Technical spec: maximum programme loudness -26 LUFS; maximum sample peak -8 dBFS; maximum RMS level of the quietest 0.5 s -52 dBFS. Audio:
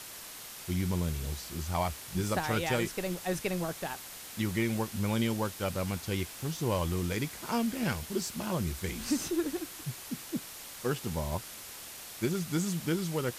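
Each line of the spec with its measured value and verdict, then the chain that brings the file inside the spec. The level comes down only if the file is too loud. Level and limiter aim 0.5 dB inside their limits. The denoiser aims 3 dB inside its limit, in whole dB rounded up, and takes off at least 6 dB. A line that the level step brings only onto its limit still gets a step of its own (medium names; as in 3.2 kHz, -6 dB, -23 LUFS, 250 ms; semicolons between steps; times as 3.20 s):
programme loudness -33.5 LUFS: pass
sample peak -17.5 dBFS: pass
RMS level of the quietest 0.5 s -45 dBFS: fail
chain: noise reduction 10 dB, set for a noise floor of -45 dBFS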